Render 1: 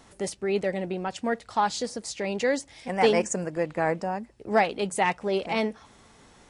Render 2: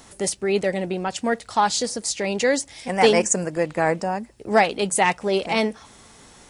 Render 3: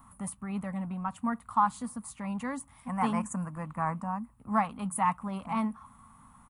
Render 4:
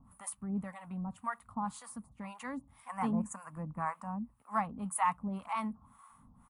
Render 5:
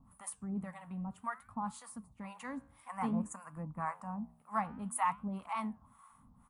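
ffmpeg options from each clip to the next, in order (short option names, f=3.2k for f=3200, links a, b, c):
-af "highshelf=f=5.2k:g=9.5,volume=4.5dB"
-af "firequalizer=gain_entry='entry(250,0);entry(360,-26);entry(1100,8);entry(1600,-11);entry(5200,-29);entry(10000,-4)':delay=0.05:min_phase=1,volume=-4.5dB"
-filter_complex "[0:a]acrossover=split=640[a][b];[a]aeval=exprs='val(0)*(1-1/2+1/2*cos(2*PI*1.9*n/s))':c=same[c];[b]aeval=exprs='val(0)*(1-1/2-1/2*cos(2*PI*1.9*n/s))':c=same[d];[c][d]amix=inputs=2:normalize=0"
-af "flanger=delay=6.3:depth=9.2:regen=-85:speed=0.56:shape=sinusoidal,volume=2.5dB"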